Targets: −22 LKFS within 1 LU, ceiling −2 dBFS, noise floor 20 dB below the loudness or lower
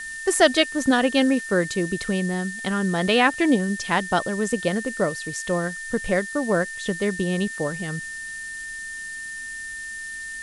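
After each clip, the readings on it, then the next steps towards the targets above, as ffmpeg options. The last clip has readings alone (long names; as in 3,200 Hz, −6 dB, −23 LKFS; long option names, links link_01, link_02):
interfering tone 1,800 Hz; level of the tone −32 dBFS; background noise floor −34 dBFS; target noise floor −44 dBFS; integrated loudness −23.5 LKFS; sample peak −3.5 dBFS; target loudness −22.0 LKFS
→ -af "bandreject=frequency=1800:width=30"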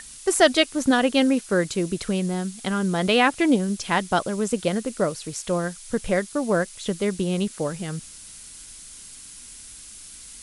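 interfering tone none found; background noise floor −43 dBFS; target noise floor −44 dBFS
→ -af "afftdn=noise_reduction=6:noise_floor=-43"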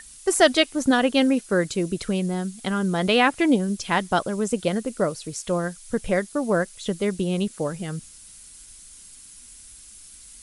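background noise floor −46 dBFS; integrated loudness −23.5 LKFS; sample peak −4.0 dBFS; target loudness −22.0 LKFS
→ -af "volume=1.5dB"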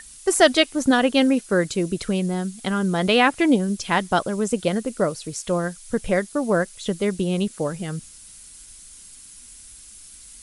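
integrated loudness −22.0 LKFS; sample peak −2.5 dBFS; background noise floor −45 dBFS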